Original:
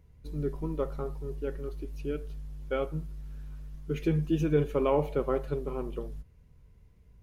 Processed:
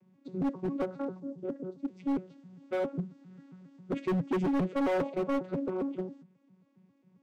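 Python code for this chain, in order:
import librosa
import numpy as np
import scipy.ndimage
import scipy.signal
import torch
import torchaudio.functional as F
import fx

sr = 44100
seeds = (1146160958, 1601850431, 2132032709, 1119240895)

y = fx.vocoder_arp(x, sr, chord='bare fifth', root=54, every_ms=135)
y = fx.peak_eq(y, sr, hz=2200.0, db=-11.0, octaves=2.0, at=(1.2, 1.88))
y = np.clip(y, -10.0 ** (-30.0 / 20.0), 10.0 ** (-30.0 / 20.0))
y = y * librosa.db_to_amplitude(4.0)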